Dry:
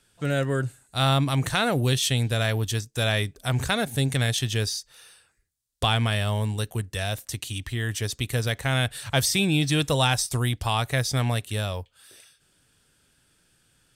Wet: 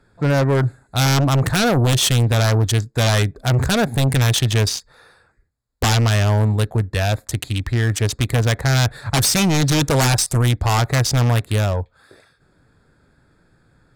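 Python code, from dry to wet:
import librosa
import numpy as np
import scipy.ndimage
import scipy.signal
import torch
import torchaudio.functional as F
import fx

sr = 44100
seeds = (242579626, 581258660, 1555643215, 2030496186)

y = fx.wiener(x, sr, points=15)
y = fx.fold_sine(y, sr, drive_db=14, ceiling_db=-6.5)
y = F.gain(torch.from_numpy(y), -6.0).numpy()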